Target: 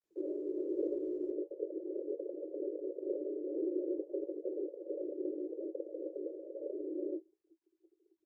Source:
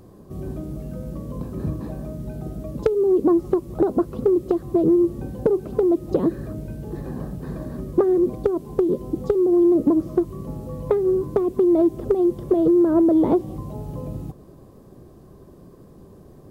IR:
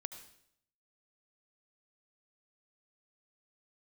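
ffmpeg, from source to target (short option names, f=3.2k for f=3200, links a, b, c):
-af "afftfilt=real='re*gte(hypot(re,im),0.0398)':imag='im*gte(hypot(re,im),0.0398)':win_size=1024:overlap=0.75,aemphasis=mode=reproduction:type=cd,agate=range=-33dB:threshold=-40dB:ratio=3:detection=peak,aecho=1:1:6.1:0.63,crystalizer=i=8.5:c=0,aeval=exprs='(mod(7.08*val(0)+1,2)-1)/7.08':c=same,aecho=1:1:43|73:0.251|0.141,asetrate=88200,aresample=44100,asuperpass=centerf=420:order=20:qfactor=1.6,volume=-3dB" -ar 48000 -c:a libopus -b:a 24k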